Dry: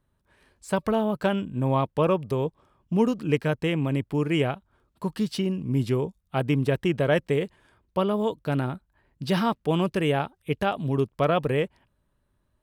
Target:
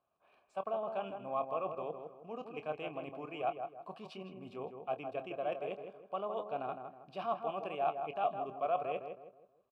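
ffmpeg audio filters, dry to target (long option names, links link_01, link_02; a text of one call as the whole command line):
ffmpeg -i in.wav -filter_complex "[0:a]areverse,acompressor=threshold=-30dB:ratio=12,areverse,asplit=3[link_01][link_02][link_03];[link_01]bandpass=frequency=730:width_type=q:width=8,volume=0dB[link_04];[link_02]bandpass=frequency=1090:width_type=q:width=8,volume=-6dB[link_05];[link_03]bandpass=frequency=2440:width_type=q:width=8,volume=-9dB[link_06];[link_04][link_05][link_06]amix=inputs=3:normalize=0,atempo=1.3,asplit=2[link_07][link_08];[link_08]adelay=26,volume=-12dB[link_09];[link_07][link_09]amix=inputs=2:normalize=0,asplit=2[link_10][link_11];[link_11]adelay=160,lowpass=frequency=1500:poles=1,volume=-6dB,asplit=2[link_12][link_13];[link_13]adelay=160,lowpass=frequency=1500:poles=1,volume=0.39,asplit=2[link_14][link_15];[link_15]adelay=160,lowpass=frequency=1500:poles=1,volume=0.39,asplit=2[link_16][link_17];[link_17]adelay=160,lowpass=frequency=1500:poles=1,volume=0.39,asplit=2[link_18][link_19];[link_19]adelay=160,lowpass=frequency=1500:poles=1,volume=0.39[link_20];[link_10][link_12][link_14][link_16][link_18][link_20]amix=inputs=6:normalize=0,volume=8dB" out.wav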